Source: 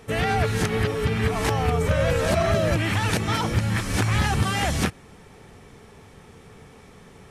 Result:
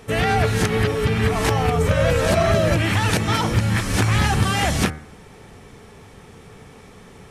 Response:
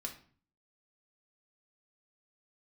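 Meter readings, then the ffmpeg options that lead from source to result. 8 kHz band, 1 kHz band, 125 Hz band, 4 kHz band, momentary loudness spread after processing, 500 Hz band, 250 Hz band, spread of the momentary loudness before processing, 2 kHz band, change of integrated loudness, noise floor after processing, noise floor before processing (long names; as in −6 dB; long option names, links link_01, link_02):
+4.0 dB, +3.5 dB, +3.5 dB, +4.0 dB, 3 LU, +3.5 dB, +3.5 dB, 3 LU, +3.5 dB, +3.5 dB, −45 dBFS, −49 dBFS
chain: -af "bandreject=frequency=76.45:width_type=h:width=4,bandreject=frequency=152.9:width_type=h:width=4,bandreject=frequency=229.35:width_type=h:width=4,bandreject=frequency=305.8:width_type=h:width=4,bandreject=frequency=382.25:width_type=h:width=4,bandreject=frequency=458.7:width_type=h:width=4,bandreject=frequency=535.15:width_type=h:width=4,bandreject=frequency=611.6:width_type=h:width=4,bandreject=frequency=688.05:width_type=h:width=4,bandreject=frequency=764.5:width_type=h:width=4,bandreject=frequency=840.95:width_type=h:width=4,bandreject=frequency=917.4:width_type=h:width=4,bandreject=frequency=993.85:width_type=h:width=4,bandreject=frequency=1070.3:width_type=h:width=4,bandreject=frequency=1146.75:width_type=h:width=4,bandreject=frequency=1223.2:width_type=h:width=4,bandreject=frequency=1299.65:width_type=h:width=4,bandreject=frequency=1376.1:width_type=h:width=4,bandreject=frequency=1452.55:width_type=h:width=4,bandreject=frequency=1529:width_type=h:width=4,bandreject=frequency=1605.45:width_type=h:width=4,bandreject=frequency=1681.9:width_type=h:width=4,bandreject=frequency=1758.35:width_type=h:width=4,bandreject=frequency=1834.8:width_type=h:width=4,bandreject=frequency=1911.25:width_type=h:width=4,bandreject=frequency=1987.7:width_type=h:width=4,bandreject=frequency=2064.15:width_type=h:width=4,bandreject=frequency=2140.6:width_type=h:width=4,bandreject=frequency=2217.05:width_type=h:width=4,bandreject=frequency=2293.5:width_type=h:width=4,volume=4dB"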